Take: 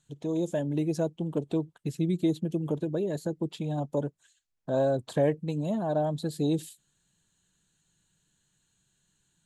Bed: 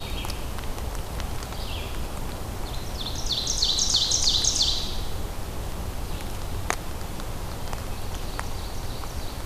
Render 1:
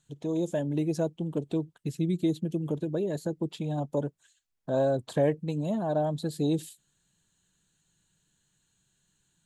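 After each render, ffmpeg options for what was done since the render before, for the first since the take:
-filter_complex "[0:a]asettb=1/sr,asplit=3[a][b][c];[a]atrim=end=1.194[d];[b]atrim=start=1.19:end=2.92,asetpts=PTS-STARTPTS,afade=t=in:d=0.004:c=qsin,afade=t=out:st=1.726:d=0.004:c=qsin,equalizer=f=880:t=o:w=1.7:g=-3.5[e];[c]atrim=start=2.916[f];[d][e]acrossfade=d=0.004:c1=hsin:c2=qsin[g];[g][f]acrossfade=d=0.004:c1=qsin:c2=hsin"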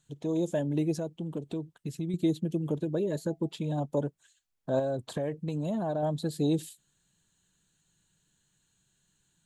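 -filter_complex "[0:a]asettb=1/sr,asplit=3[a][b][c];[a]atrim=end=0.984[d];[b]atrim=start=0.98:end=2.14,asetpts=PTS-STARTPTS,afade=t=in:d=0.004:c=qsin,afade=t=out:st=1.156:d=0.004:c=qsin,acompressor=threshold=-33dB:ratio=2:attack=3.2:release=140:knee=1:detection=peak[e];[c]atrim=start=2.136[f];[d][e]acrossfade=d=0.004:c1=hsin:c2=qsin[g];[g][f]acrossfade=d=0.004:c1=qsin:c2=hsin,asettb=1/sr,asplit=3[h][i][j];[h]atrim=end=2.994[k];[i]atrim=start=2.99:end=3.72,asetpts=PTS-STARTPTS,afade=t=in:d=0.004:c=qsin,afade=t=out:st=0.726:d=0.004:c=qsin,asuperstop=centerf=730:order=20:qfactor=5.6[l];[j]atrim=start=3.716[m];[k][l]acrossfade=d=0.004:c1=hsin:c2=qsin[n];[n][m]acrossfade=d=0.004:c1=qsin:c2=hsin,asettb=1/sr,asplit=3[o][p][q];[o]atrim=end=4.794[r];[p]atrim=start=4.79:end=6.03,asetpts=PTS-STARTPTS,afade=t=in:d=0.004:c=qsin,afade=t=out:st=1.236:d=0.004:c=qsin,acompressor=threshold=-27dB:ratio=6:attack=3.2:release=140:knee=1:detection=peak[s];[q]atrim=start=6.026[t];[r][s]acrossfade=d=0.004:c1=hsin:c2=qsin[u];[u][t]acrossfade=d=0.004:c1=qsin:c2=hsin"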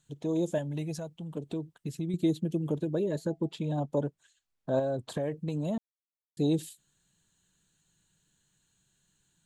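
-filter_complex "[0:a]asettb=1/sr,asplit=3[a][b][c];[a]atrim=end=0.584[d];[b]atrim=start=0.58:end=1.37,asetpts=PTS-STARTPTS,afade=t=in:d=0.004:c=qsin,afade=t=out:st=0.786:d=0.004:c=qsin,equalizer=f=340:w=1.1:g=-10.5[e];[c]atrim=start=1.366[f];[d][e]acrossfade=d=0.004:c1=hsin:c2=qsin[g];[g][f]acrossfade=d=0.004:c1=qsin:c2=hsin,asettb=1/sr,asplit=3[h][i][j];[h]atrim=end=3.084[k];[i]atrim=start=3.08:end=5.09,asetpts=PTS-STARTPTS,afade=t=in:d=0.004:c=qsin,afade=t=out:st=2.006:d=0.004:c=qsin,highshelf=f=8.9k:g=-8.5[l];[j]atrim=start=5.086[m];[k][l]acrossfade=d=0.004:c1=hsin:c2=qsin[n];[n][m]acrossfade=d=0.004:c1=qsin:c2=hsin,asplit=3[o][p][q];[o]atrim=end=5.78,asetpts=PTS-STARTPTS,afade=t=out:st=5.776:d=0.004:c=hsin[r];[p]atrim=start=5.78:end=6.37,asetpts=PTS-STARTPTS,volume=0[s];[q]atrim=start=6.37,asetpts=PTS-STARTPTS,afade=t=in:d=0.004:c=hsin[t];[r][s][t]concat=n=3:v=0:a=1"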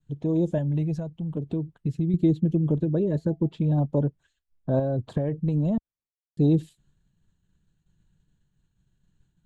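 -af "aemphasis=mode=reproduction:type=riaa,agate=range=-33dB:threshold=-59dB:ratio=3:detection=peak"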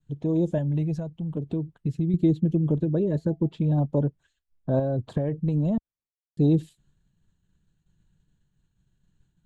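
-af anull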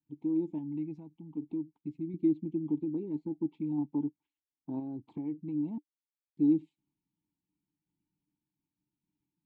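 -filter_complex "[0:a]asplit=3[a][b][c];[a]bandpass=f=300:t=q:w=8,volume=0dB[d];[b]bandpass=f=870:t=q:w=8,volume=-6dB[e];[c]bandpass=f=2.24k:t=q:w=8,volume=-9dB[f];[d][e][f]amix=inputs=3:normalize=0"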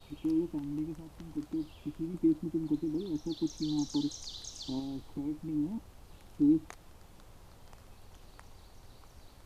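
-filter_complex "[1:a]volume=-22.5dB[a];[0:a][a]amix=inputs=2:normalize=0"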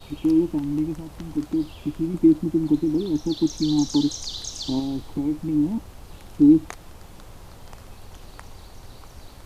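-af "volume=11.5dB"

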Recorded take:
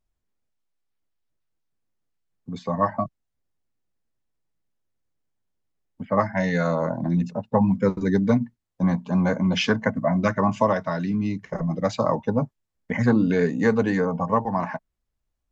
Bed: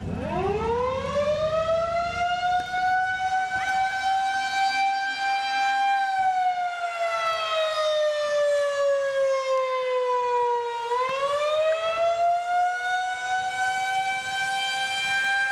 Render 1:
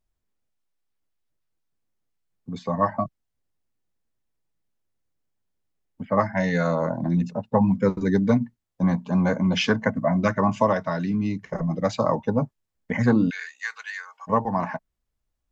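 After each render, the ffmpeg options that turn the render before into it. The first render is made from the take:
-filter_complex "[0:a]asplit=3[a][b][c];[a]afade=t=out:st=13.29:d=0.02[d];[b]highpass=f=1.5k:w=0.5412,highpass=f=1.5k:w=1.3066,afade=t=in:st=13.29:d=0.02,afade=t=out:st=14.27:d=0.02[e];[c]afade=t=in:st=14.27:d=0.02[f];[d][e][f]amix=inputs=3:normalize=0"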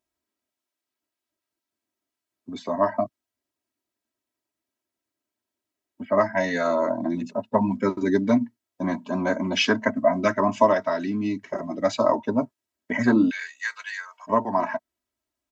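-af "highpass=170,aecho=1:1:3.1:0.87"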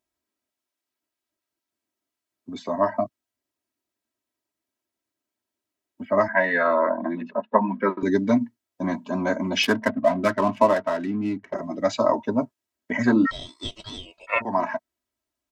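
-filter_complex "[0:a]asettb=1/sr,asplit=3[a][b][c];[a]atrim=end=6.284[d];[b]atrim=start=6.28:end=8.03,asetpts=PTS-STARTPTS,afade=t=in:d=0.004:c=qsin,afade=t=out:st=1.746:d=0.004:c=qsin,highpass=f=190:w=0.5412,highpass=f=190:w=1.3066,equalizer=f=280:t=q:w=4:g=-4,equalizer=f=510:t=q:w=4:g=3,equalizer=f=1.1k:t=q:w=4:g=8,equalizer=f=1.7k:t=q:w=4:g=9,lowpass=f=3.2k:w=0.5412,lowpass=f=3.2k:w=1.3066[e];[c]atrim=start=8.026[f];[d][e]acrossfade=d=0.004:c1=hsin:c2=qsin[g];[g][f]acrossfade=d=0.004:c1=qsin:c2=hsin,asettb=1/sr,asplit=3[h][i][j];[h]atrim=end=9.634[k];[i]atrim=start=9.63:end=11.54,asetpts=PTS-STARTPTS,afade=t=in:d=0.004:c=qsin,afade=t=out:st=1.906:d=0.004:c=qsin,adynamicsmooth=sensitivity=5.5:basefreq=1.3k[l];[j]atrim=start=11.536[m];[k][l]acrossfade=d=0.004:c1=hsin:c2=qsin[n];[n][m]acrossfade=d=0.004:c1=qsin:c2=hsin,asplit=3[o][p][q];[o]afade=t=out:st=13.25:d=0.02[r];[p]aeval=exprs='val(0)*sin(2*PI*1600*n/s)':c=same,afade=t=in:st=13.25:d=0.02,afade=t=out:st=14.4:d=0.02[s];[q]afade=t=in:st=14.4:d=0.02[t];[r][s][t]amix=inputs=3:normalize=0"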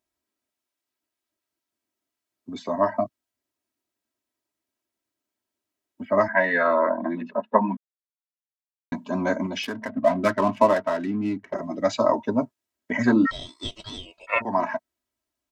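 -filter_complex "[0:a]asettb=1/sr,asplit=3[a][b][c];[a]atrim=end=9.464[d];[b]atrim=start=9.46:end=9.97,asetpts=PTS-STARTPTS,afade=t=in:d=0.004:c=qsin,afade=t=out:st=0.506:d=0.004:c=qsin,acompressor=threshold=-28dB:ratio=4:attack=3.2:release=140:knee=1:detection=peak[e];[c]atrim=start=9.966[f];[d][e]acrossfade=d=0.004:c1=hsin:c2=qsin[g];[g][f]acrossfade=d=0.004:c1=qsin:c2=hsin,asplit=3[h][i][j];[h]atrim=end=7.77,asetpts=PTS-STARTPTS,afade=t=out:st=7.766:d=0.004:c=hsin[k];[i]atrim=start=7.77:end=8.92,asetpts=PTS-STARTPTS,volume=0[l];[j]atrim=start=8.92,asetpts=PTS-STARTPTS,afade=t=in:d=0.004:c=hsin[m];[k][l][m]concat=n=3:v=0:a=1"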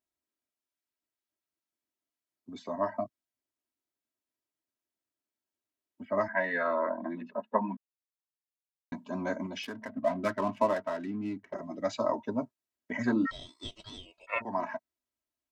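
-af "volume=-9dB"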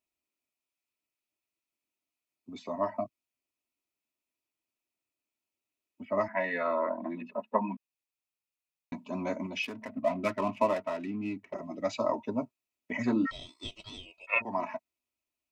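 -af "equalizer=f=2.5k:t=o:w=0.23:g=12,bandreject=f=1.6k:w=5.4"

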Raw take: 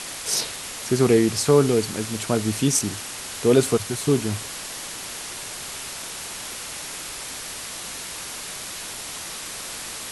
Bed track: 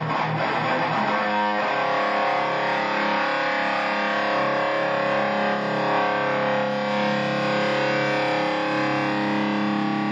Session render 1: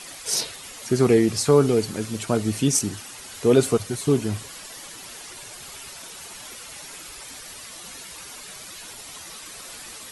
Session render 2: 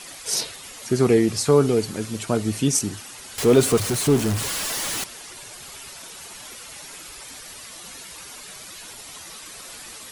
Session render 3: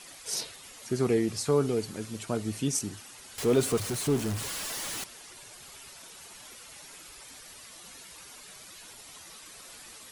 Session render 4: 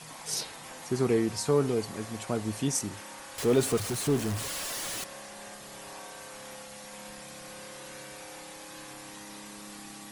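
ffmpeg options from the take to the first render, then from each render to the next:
-af "afftdn=nr=10:nf=-35"
-filter_complex "[0:a]asettb=1/sr,asplit=3[a][b][c];[a]atrim=end=3.384[d];[b]atrim=start=3.38:end=5.04,asetpts=PTS-STARTPTS,afade=t=in:d=0.004:c=qsin,afade=t=out:st=1.656:d=0.004:c=qsin,aeval=exprs='val(0)+0.5*0.0708*sgn(val(0))':c=same[e];[c]atrim=start=5.036[f];[d][e]acrossfade=d=0.004:c1=hsin:c2=qsin[g];[g][f]acrossfade=d=0.004:c1=qsin:c2=hsin"
-af "volume=-8.5dB"
-filter_complex "[1:a]volume=-24.5dB[a];[0:a][a]amix=inputs=2:normalize=0"

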